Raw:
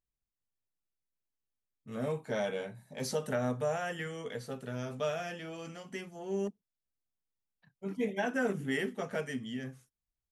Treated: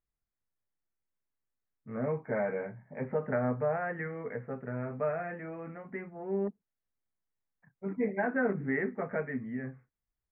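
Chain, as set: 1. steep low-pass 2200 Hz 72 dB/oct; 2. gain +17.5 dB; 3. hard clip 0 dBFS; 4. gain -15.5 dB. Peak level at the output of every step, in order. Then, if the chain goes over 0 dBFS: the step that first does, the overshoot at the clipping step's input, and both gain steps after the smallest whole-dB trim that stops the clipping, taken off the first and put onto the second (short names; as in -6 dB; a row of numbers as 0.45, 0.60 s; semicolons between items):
-20.5, -3.0, -3.0, -18.5 dBFS; no overload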